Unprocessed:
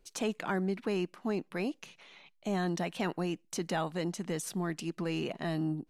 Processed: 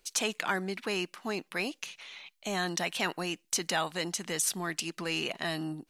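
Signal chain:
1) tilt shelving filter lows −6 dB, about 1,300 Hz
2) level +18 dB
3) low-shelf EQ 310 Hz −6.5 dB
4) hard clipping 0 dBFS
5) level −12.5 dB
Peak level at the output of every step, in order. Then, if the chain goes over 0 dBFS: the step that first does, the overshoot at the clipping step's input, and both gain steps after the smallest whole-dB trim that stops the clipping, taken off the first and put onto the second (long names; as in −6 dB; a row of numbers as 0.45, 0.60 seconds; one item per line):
−20.0, −2.0, −2.5, −2.5, −15.0 dBFS
no step passes full scale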